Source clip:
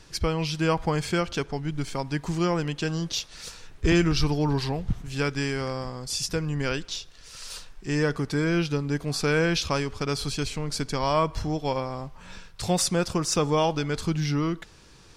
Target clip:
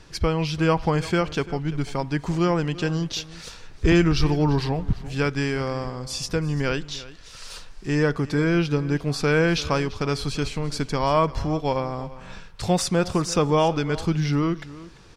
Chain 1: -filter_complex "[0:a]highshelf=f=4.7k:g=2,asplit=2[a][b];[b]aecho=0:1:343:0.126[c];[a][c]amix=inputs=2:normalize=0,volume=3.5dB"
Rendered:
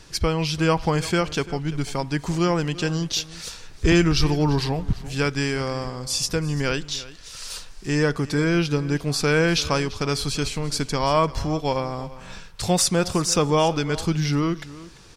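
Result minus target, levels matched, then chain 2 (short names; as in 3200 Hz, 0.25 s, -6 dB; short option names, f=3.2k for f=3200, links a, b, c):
8000 Hz band +6.5 dB
-filter_complex "[0:a]highshelf=f=4.7k:g=-8.5,asplit=2[a][b];[b]aecho=0:1:343:0.126[c];[a][c]amix=inputs=2:normalize=0,volume=3.5dB"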